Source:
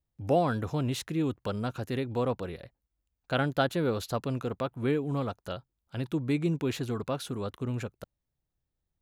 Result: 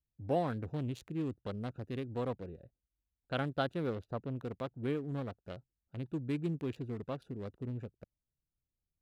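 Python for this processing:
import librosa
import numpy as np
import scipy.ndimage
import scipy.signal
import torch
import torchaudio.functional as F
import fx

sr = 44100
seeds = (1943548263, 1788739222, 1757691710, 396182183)

y = fx.wiener(x, sr, points=41)
y = fx.high_shelf(y, sr, hz=3000.0, db=-11.0, at=(3.95, 4.36))
y = F.gain(torch.from_numpy(y), -6.5).numpy()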